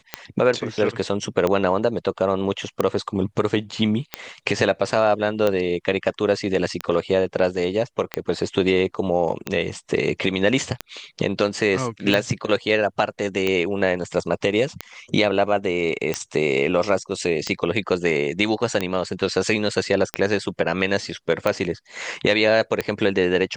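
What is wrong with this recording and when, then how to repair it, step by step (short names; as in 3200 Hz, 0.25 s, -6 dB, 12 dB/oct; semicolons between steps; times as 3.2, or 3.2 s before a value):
tick 45 rpm -8 dBFS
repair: de-click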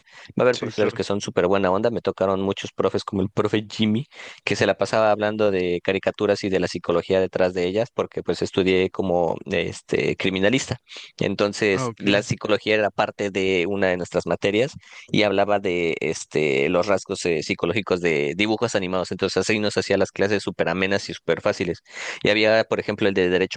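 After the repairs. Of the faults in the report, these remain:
none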